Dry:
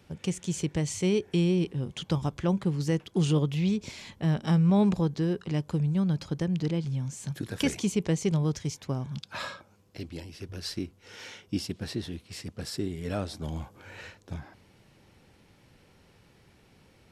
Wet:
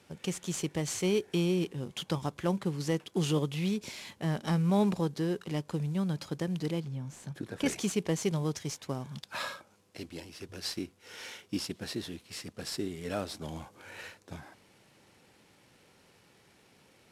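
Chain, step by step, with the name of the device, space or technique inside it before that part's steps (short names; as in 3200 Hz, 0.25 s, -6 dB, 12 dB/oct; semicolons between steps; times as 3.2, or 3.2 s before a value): early wireless headset (HPF 270 Hz 6 dB/oct; CVSD 64 kbps); 6.8–7.66 high shelf 2100 Hz -10.5 dB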